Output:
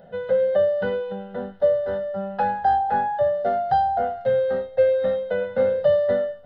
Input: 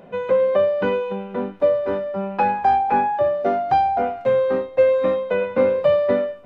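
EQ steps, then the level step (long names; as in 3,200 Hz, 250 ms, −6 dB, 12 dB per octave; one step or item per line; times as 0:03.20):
low-shelf EQ 460 Hz +3 dB
phaser with its sweep stopped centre 1,600 Hz, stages 8
−2.0 dB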